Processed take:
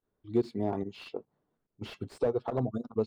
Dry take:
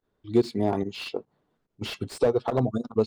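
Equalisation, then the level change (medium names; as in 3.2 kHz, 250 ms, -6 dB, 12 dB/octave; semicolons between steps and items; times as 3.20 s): treble shelf 2.6 kHz -9.5 dB; -6.0 dB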